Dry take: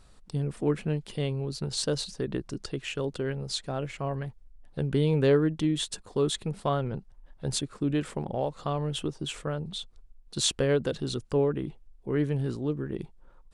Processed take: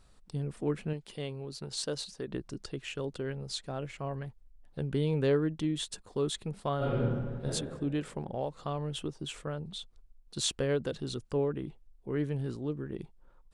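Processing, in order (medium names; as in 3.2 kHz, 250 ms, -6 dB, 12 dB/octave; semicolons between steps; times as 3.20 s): 0.93–2.32 s: bass shelf 190 Hz -8.5 dB; 6.77–7.45 s: reverb throw, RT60 1.7 s, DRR -9.5 dB; trim -5 dB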